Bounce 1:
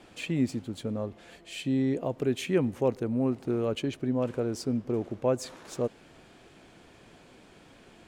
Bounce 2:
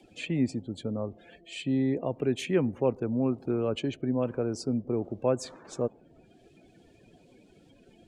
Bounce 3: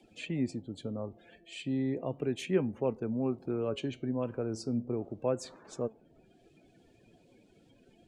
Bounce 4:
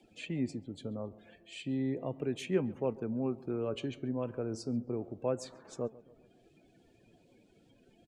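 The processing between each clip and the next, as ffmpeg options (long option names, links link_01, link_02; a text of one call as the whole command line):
ffmpeg -i in.wav -filter_complex "[0:a]afftdn=noise_reduction=26:noise_floor=-50,acrossover=split=190|1100|2500[link_01][link_02][link_03][link_04];[link_04]acompressor=mode=upward:threshold=-55dB:ratio=2.5[link_05];[link_01][link_02][link_03][link_05]amix=inputs=4:normalize=0" out.wav
ffmpeg -i in.wav -af "flanger=delay=4.5:depth=4.6:regen=83:speed=0.34:shape=sinusoidal" out.wav
ffmpeg -i in.wav -filter_complex "[0:a]asplit=2[link_01][link_02];[link_02]adelay=136,lowpass=frequency=2200:poles=1,volume=-20dB,asplit=2[link_03][link_04];[link_04]adelay=136,lowpass=frequency=2200:poles=1,volume=0.51,asplit=2[link_05][link_06];[link_06]adelay=136,lowpass=frequency=2200:poles=1,volume=0.51,asplit=2[link_07][link_08];[link_08]adelay=136,lowpass=frequency=2200:poles=1,volume=0.51[link_09];[link_01][link_03][link_05][link_07][link_09]amix=inputs=5:normalize=0,volume=-2dB" out.wav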